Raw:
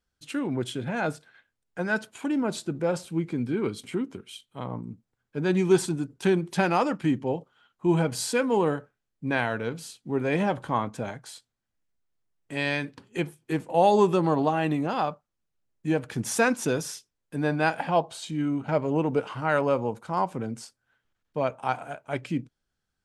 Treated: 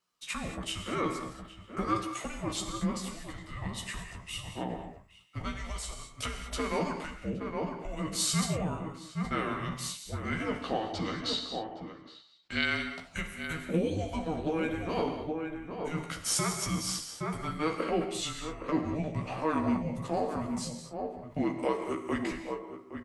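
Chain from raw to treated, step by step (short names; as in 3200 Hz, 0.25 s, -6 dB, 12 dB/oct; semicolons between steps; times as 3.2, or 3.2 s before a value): 10.6–12.64 synth low-pass 4600 Hz, resonance Q 4.6; outdoor echo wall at 140 m, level -12 dB; compressor 10:1, threshold -29 dBFS, peak gain reduction 15 dB; Chebyshev high-pass 510 Hz, order 3; doubler 14 ms -5 dB; non-linear reverb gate 0.25 s flat, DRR 5.5 dB; frequency shift -320 Hz; sustainer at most 150 dB/s; gain +3 dB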